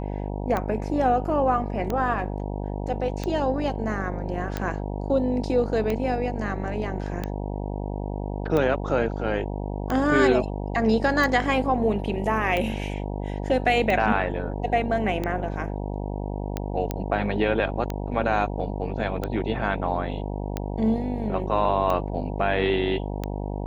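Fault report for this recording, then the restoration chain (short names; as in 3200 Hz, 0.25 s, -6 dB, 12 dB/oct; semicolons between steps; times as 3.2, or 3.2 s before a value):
buzz 50 Hz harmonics 19 -30 dBFS
tick 45 rpm -14 dBFS
16.91 pop -13 dBFS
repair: de-click; de-hum 50 Hz, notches 19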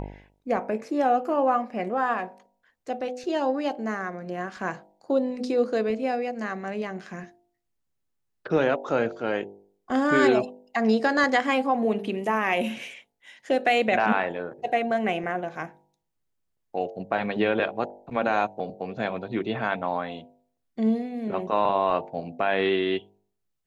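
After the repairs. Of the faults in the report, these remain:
none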